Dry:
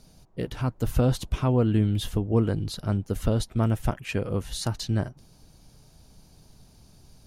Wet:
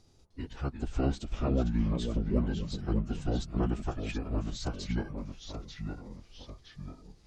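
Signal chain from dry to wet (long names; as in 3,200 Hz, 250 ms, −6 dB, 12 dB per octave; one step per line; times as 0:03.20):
phase-vocoder pitch shift with formants kept −11 semitones
delay with pitch and tempo change per echo 305 ms, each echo −2 semitones, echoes 3, each echo −6 dB
level −6.5 dB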